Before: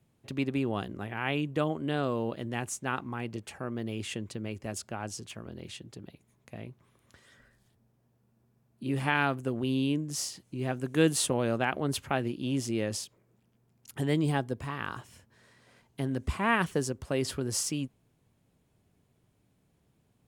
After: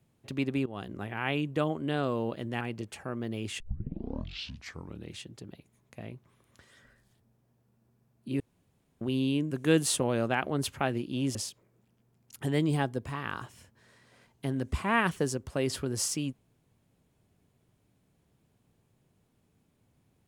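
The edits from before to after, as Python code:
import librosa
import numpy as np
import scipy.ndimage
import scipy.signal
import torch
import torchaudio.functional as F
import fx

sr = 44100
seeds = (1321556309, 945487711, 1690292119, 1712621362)

y = fx.edit(x, sr, fx.fade_in_from(start_s=0.66, length_s=0.29, floor_db=-16.5),
    fx.cut(start_s=2.61, length_s=0.55),
    fx.tape_start(start_s=4.15, length_s=1.58),
    fx.room_tone_fill(start_s=8.95, length_s=0.61),
    fx.cut(start_s=10.06, length_s=0.75),
    fx.cut(start_s=12.65, length_s=0.25), tone=tone)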